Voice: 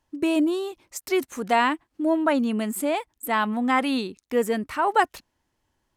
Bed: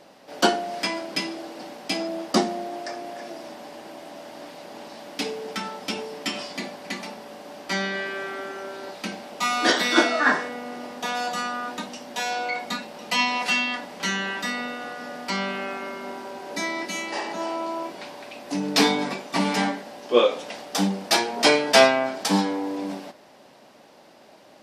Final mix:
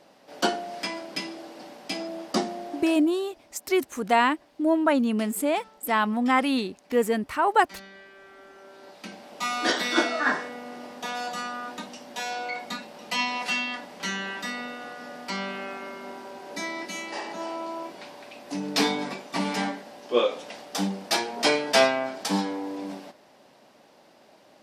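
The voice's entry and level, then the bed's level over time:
2.60 s, 0.0 dB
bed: 0:02.83 −5 dB
0:03.19 −19 dB
0:08.14 −19 dB
0:09.45 −4.5 dB

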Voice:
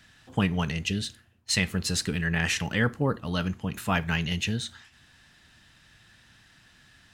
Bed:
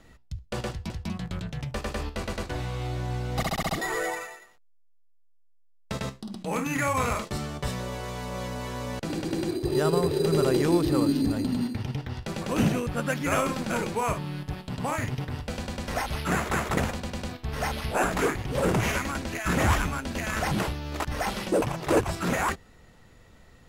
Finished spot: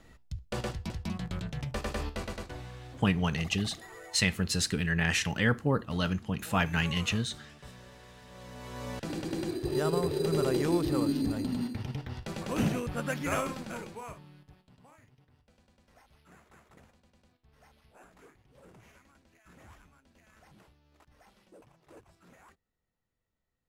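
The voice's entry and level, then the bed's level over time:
2.65 s, −1.5 dB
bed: 0:02.10 −2.5 dB
0:03.10 −19 dB
0:08.24 −19 dB
0:08.87 −5 dB
0:13.33 −5 dB
0:15.09 −32 dB

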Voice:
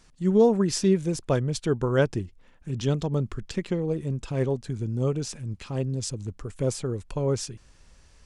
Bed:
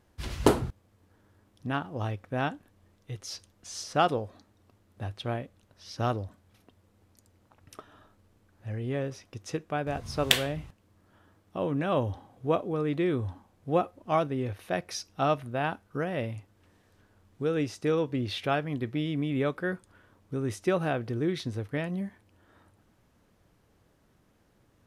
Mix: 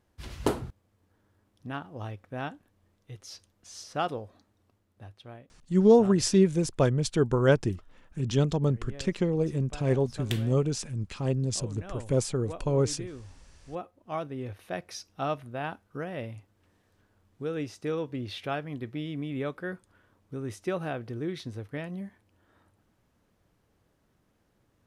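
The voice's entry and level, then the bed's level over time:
5.50 s, +0.5 dB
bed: 0:04.61 −5.5 dB
0:05.30 −14 dB
0:13.54 −14 dB
0:14.47 −4.5 dB

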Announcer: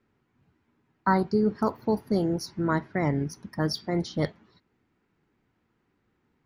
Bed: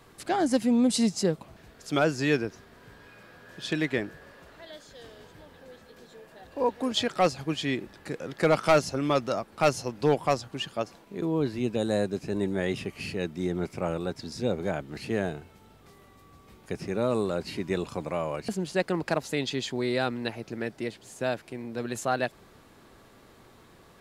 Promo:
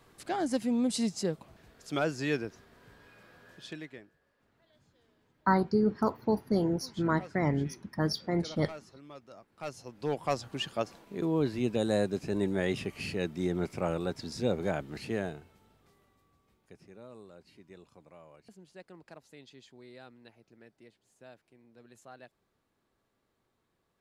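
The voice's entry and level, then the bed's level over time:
4.40 s, −2.5 dB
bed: 0:03.48 −6 dB
0:04.10 −24 dB
0:09.25 −24 dB
0:10.52 −1.5 dB
0:14.85 −1.5 dB
0:17.09 −23.5 dB

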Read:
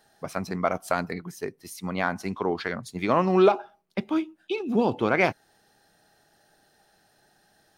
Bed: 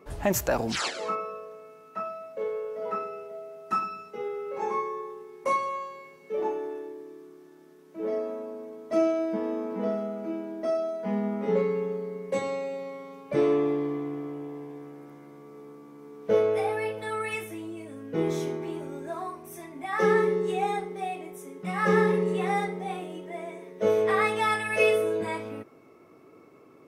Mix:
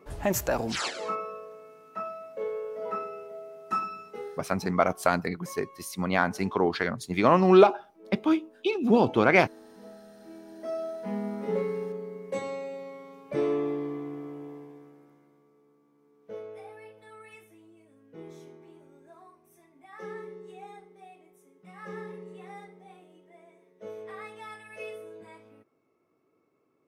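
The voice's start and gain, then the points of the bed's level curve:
4.15 s, +2.0 dB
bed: 0:04.16 −1.5 dB
0:04.54 −19 dB
0:10.05 −19 dB
0:10.84 −4 dB
0:14.50 −4 dB
0:15.61 −18 dB

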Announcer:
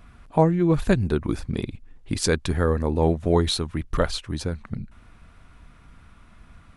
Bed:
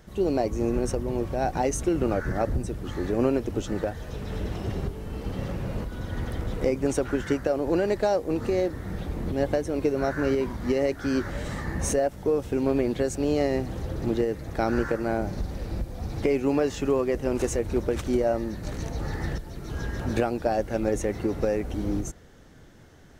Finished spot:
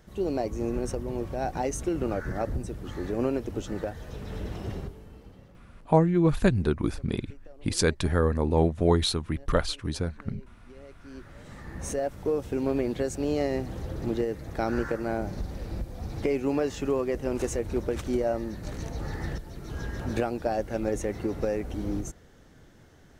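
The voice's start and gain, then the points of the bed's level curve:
5.55 s, −2.0 dB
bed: 0:04.73 −4 dB
0:05.68 −27 dB
0:10.67 −27 dB
0:12.15 −3 dB

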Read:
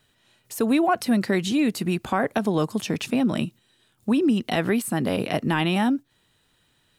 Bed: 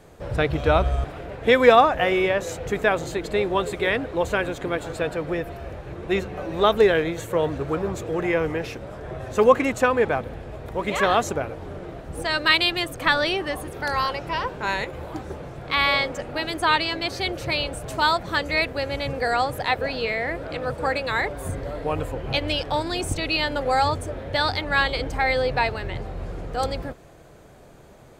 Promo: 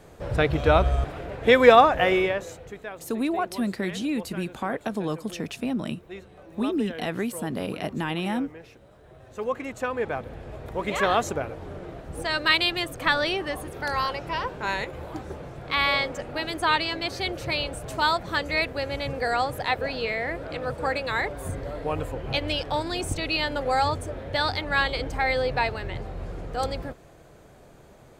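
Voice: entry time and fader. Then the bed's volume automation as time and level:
2.50 s, −6.0 dB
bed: 0:02.15 0 dB
0:02.84 −17 dB
0:09.11 −17 dB
0:10.50 −2.5 dB

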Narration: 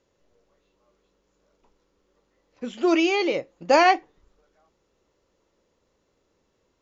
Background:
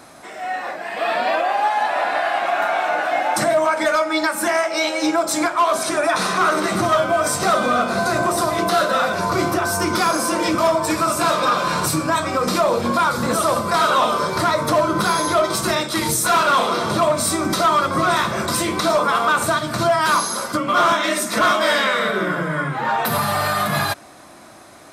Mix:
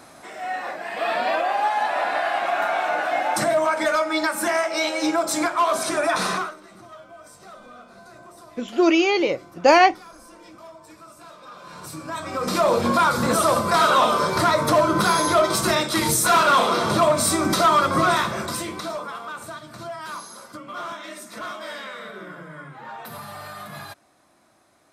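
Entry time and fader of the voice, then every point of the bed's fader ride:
5.95 s, +3.0 dB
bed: 0:06.35 −3 dB
0:06.58 −26.5 dB
0:11.41 −26.5 dB
0:12.69 −0.5 dB
0:18.04 −0.5 dB
0:19.23 −17 dB

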